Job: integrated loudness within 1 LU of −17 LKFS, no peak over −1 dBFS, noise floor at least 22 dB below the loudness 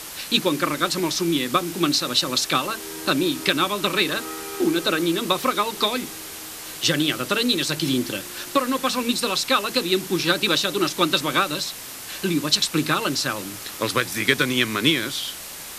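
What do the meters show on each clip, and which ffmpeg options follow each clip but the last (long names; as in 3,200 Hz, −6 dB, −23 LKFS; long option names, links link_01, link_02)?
background noise floor −36 dBFS; target noise floor −44 dBFS; integrated loudness −22.0 LKFS; sample peak −1.5 dBFS; target loudness −17.0 LKFS
→ -af "afftdn=noise_reduction=8:noise_floor=-36"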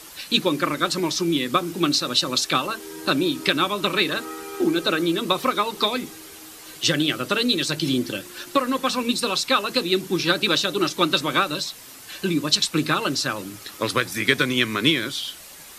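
background noise floor −43 dBFS; target noise floor −44 dBFS
→ -af "afftdn=noise_reduction=6:noise_floor=-43"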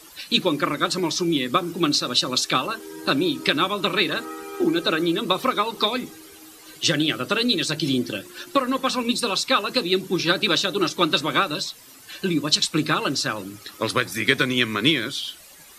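background noise floor −47 dBFS; integrated loudness −22.0 LKFS; sample peak −1.5 dBFS; target loudness −17.0 LKFS
→ -af "volume=5dB,alimiter=limit=-1dB:level=0:latency=1"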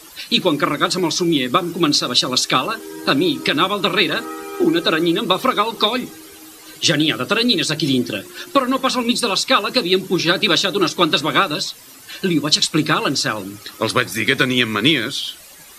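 integrated loudness −17.5 LKFS; sample peak −1.0 dBFS; background noise floor −42 dBFS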